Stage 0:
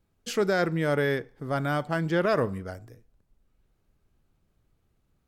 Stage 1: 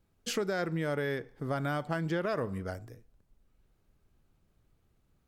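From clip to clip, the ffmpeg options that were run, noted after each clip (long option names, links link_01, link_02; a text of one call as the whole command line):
ffmpeg -i in.wav -af "acompressor=threshold=-29dB:ratio=5" out.wav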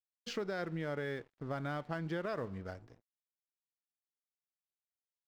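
ffmpeg -i in.wav -af "lowpass=frequency=5600:width=0.5412,lowpass=frequency=5600:width=1.3066,aeval=exprs='sgn(val(0))*max(abs(val(0))-0.00237,0)':channel_layout=same,volume=-5.5dB" out.wav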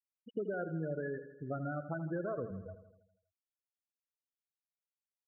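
ffmpeg -i in.wav -filter_complex "[0:a]afftfilt=real='re*gte(hypot(re,im),0.0398)':imag='im*gte(hypot(re,im),0.0398)':win_size=1024:overlap=0.75,asplit=2[link_01][link_02];[link_02]aecho=0:1:81|162|243|324|405|486|567:0.266|0.154|0.0895|0.0519|0.0301|0.0175|0.0101[link_03];[link_01][link_03]amix=inputs=2:normalize=0,volume=1dB" out.wav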